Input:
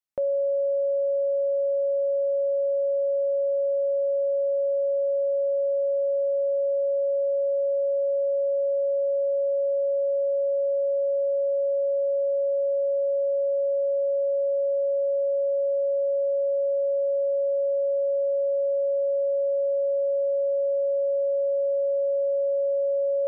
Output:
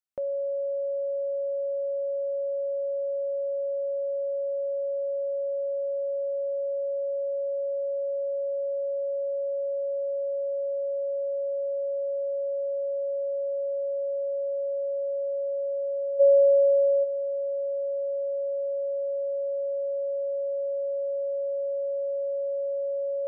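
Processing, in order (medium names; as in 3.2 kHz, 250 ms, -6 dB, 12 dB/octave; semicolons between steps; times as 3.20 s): 16.19–17.03 s: peaking EQ 430 Hz +14.5 dB -> +7 dB 2.7 oct; trim -5 dB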